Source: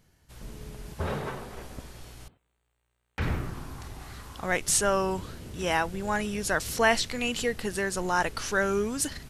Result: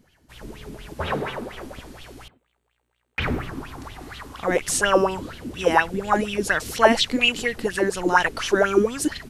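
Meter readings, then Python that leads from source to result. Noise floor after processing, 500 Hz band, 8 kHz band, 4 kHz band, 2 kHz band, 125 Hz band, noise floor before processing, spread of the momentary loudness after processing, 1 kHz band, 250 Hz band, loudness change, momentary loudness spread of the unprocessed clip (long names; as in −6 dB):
−73 dBFS, +7.5 dB, 0.0 dB, +7.5 dB, +6.0 dB, +1.5 dB, −77 dBFS, 20 LU, +7.0 dB, +7.0 dB, +6.0 dB, 20 LU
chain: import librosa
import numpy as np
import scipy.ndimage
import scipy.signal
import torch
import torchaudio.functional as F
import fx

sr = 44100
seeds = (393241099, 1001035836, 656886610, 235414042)

y = fx.bell_lfo(x, sr, hz=4.2, low_hz=240.0, high_hz=3300.0, db=18)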